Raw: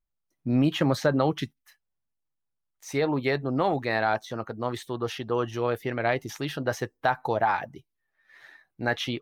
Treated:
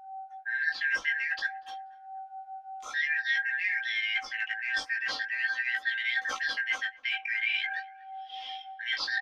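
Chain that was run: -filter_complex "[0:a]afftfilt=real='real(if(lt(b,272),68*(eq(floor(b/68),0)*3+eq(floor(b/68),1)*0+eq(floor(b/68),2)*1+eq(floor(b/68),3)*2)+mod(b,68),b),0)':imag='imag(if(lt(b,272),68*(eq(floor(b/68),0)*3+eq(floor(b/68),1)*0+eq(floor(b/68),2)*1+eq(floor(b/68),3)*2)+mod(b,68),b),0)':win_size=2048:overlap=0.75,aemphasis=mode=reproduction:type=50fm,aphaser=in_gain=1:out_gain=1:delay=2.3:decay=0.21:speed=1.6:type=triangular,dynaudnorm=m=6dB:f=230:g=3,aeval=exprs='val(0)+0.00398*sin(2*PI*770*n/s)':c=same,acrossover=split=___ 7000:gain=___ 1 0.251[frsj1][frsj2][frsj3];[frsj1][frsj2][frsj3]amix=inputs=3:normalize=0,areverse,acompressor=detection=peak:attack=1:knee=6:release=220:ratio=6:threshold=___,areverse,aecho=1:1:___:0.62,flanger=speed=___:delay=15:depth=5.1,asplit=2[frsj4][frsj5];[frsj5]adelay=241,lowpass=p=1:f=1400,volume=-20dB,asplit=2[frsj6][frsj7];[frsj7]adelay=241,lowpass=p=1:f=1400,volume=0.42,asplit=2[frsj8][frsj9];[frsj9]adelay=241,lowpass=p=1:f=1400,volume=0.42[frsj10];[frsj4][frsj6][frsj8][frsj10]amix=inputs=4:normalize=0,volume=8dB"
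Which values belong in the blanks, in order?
360, 0.224, -32dB, 3.8, 0.5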